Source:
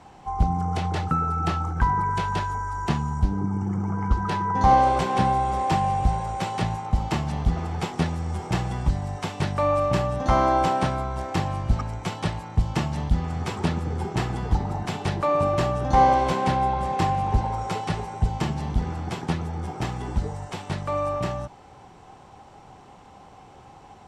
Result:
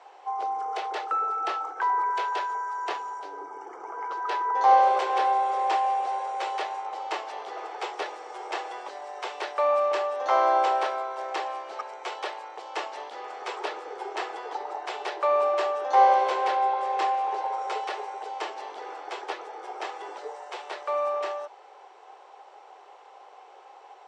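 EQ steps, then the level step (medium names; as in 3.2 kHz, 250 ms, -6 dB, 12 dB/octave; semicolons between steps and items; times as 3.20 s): steep high-pass 400 Hz 48 dB/octave; distance through air 92 m; 0.0 dB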